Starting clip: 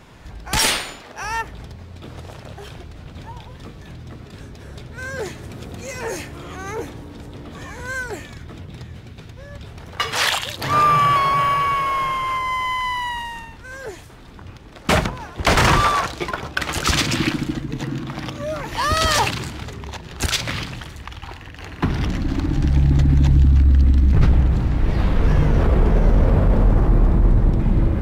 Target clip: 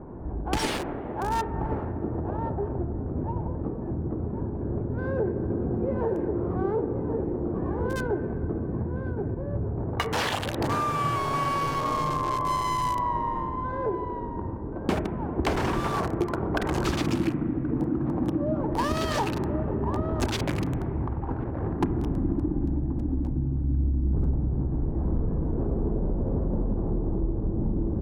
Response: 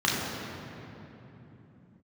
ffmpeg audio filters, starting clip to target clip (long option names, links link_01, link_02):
-filter_complex "[0:a]acrossover=split=1300[link_01][link_02];[link_01]aecho=1:1:1077:0.299[link_03];[link_02]acrusher=bits=3:mix=0:aa=0.000001[link_04];[link_03][link_04]amix=inputs=2:normalize=0,equalizer=frequency=350:width_type=o:width=0.8:gain=8,adynamicsmooth=sensitivity=7:basefreq=2700,tiltshelf=frequency=1500:gain=4.5,bandreject=frequency=46.45:width_type=h:width=4,bandreject=frequency=92.9:width_type=h:width=4,bandreject=frequency=139.35:width_type=h:width=4,bandreject=frequency=185.8:width_type=h:width=4,bandreject=frequency=232.25:width_type=h:width=4,bandreject=frequency=278.7:width_type=h:width=4,bandreject=frequency=325.15:width_type=h:width=4,bandreject=frequency=371.6:width_type=h:width=4,bandreject=frequency=418.05:width_type=h:width=4,bandreject=frequency=464.5:width_type=h:width=4,bandreject=frequency=510.95:width_type=h:width=4,bandreject=frequency=557.4:width_type=h:width=4,bandreject=frequency=603.85:width_type=h:width=4,bandreject=frequency=650.3:width_type=h:width=4,bandreject=frequency=696.75:width_type=h:width=4,acompressor=threshold=-24dB:ratio=12,asplit=2[link_05][link_06];[1:a]atrim=start_sample=2205,lowpass=frequency=2300:width=0.5412,lowpass=frequency=2300:width=1.3066[link_07];[link_06][link_07]afir=irnorm=-1:irlink=0,volume=-23dB[link_08];[link_05][link_08]amix=inputs=2:normalize=0"